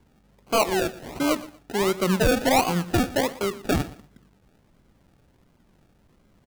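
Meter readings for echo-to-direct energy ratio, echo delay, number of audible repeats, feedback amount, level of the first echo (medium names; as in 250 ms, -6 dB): -18.0 dB, 119 ms, 2, 24%, -18.0 dB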